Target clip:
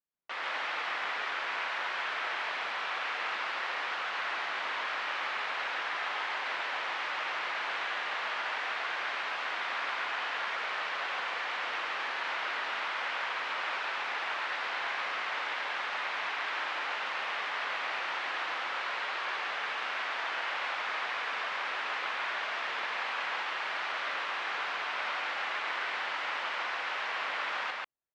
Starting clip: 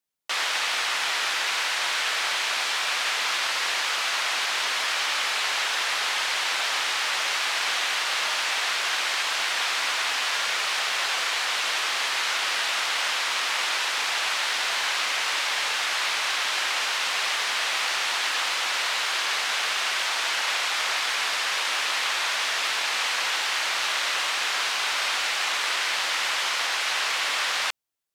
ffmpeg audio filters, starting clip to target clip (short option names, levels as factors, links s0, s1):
-filter_complex "[0:a]lowpass=2000,asplit=2[s0][s1];[s1]aecho=0:1:37.9|139.9:0.282|0.891[s2];[s0][s2]amix=inputs=2:normalize=0,volume=0.447"